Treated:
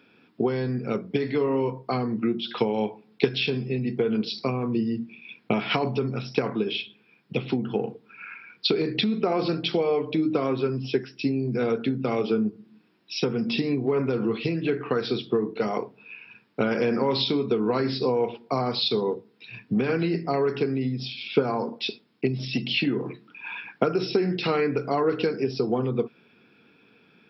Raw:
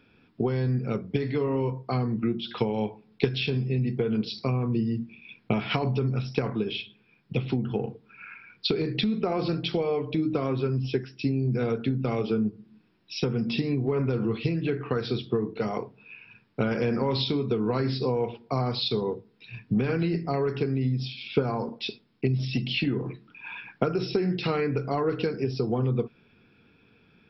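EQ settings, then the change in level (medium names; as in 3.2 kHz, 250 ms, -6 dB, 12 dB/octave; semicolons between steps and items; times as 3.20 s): high-pass 200 Hz 12 dB/octave; +3.5 dB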